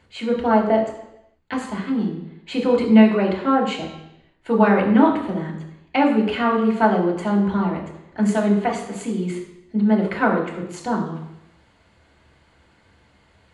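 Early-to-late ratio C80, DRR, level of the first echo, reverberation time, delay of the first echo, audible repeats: 8.5 dB, -3.0 dB, none, 0.85 s, none, none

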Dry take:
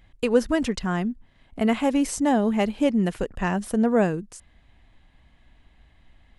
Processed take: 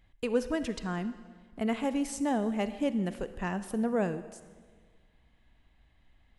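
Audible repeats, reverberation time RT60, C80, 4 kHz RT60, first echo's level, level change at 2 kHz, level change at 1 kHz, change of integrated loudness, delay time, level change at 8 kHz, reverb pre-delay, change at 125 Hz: none, 1.6 s, 14.0 dB, 1.3 s, none, -8.0 dB, -8.5 dB, -8.5 dB, none, -8.5 dB, 36 ms, -8.5 dB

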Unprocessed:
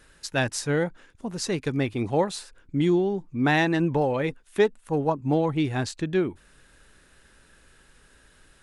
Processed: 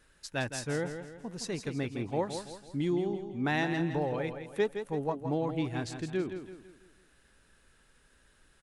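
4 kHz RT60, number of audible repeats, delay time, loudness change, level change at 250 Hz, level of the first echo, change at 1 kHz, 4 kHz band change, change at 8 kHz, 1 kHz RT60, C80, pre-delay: none, 4, 0.165 s, -8.0 dB, -8.0 dB, -8.5 dB, -8.0 dB, -8.0 dB, -8.0 dB, none, none, none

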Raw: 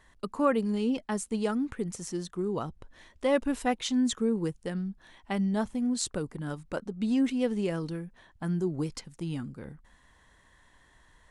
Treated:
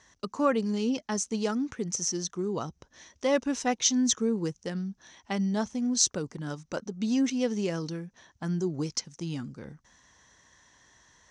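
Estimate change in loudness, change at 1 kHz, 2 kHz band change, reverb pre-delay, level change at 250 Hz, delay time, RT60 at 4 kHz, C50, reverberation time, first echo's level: +1.5 dB, 0.0 dB, +1.0 dB, none, 0.0 dB, none, none, none, none, none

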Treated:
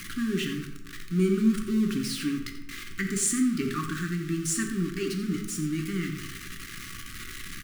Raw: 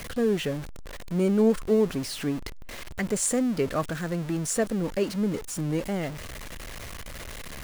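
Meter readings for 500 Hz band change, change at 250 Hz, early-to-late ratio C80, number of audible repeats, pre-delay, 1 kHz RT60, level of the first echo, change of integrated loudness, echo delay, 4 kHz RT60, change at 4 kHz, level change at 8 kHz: -8.5 dB, +0.5 dB, 8.5 dB, 1, 4 ms, 0.75 s, -12.0 dB, -1.5 dB, 88 ms, 0.55 s, +1.5 dB, +1.0 dB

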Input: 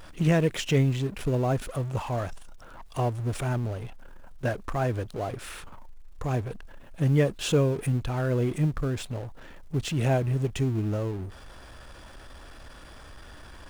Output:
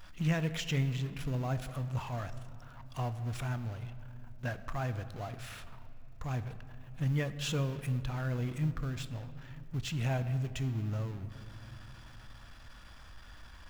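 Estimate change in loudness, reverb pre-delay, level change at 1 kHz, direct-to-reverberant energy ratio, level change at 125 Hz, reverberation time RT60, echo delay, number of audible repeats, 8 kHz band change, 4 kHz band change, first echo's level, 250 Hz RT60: -8.0 dB, 4 ms, -8.5 dB, 11.0 dB, -6.5 dB, 2.9 s, none, none, -7.5 dB, -5.0 dB, none, 4.4 s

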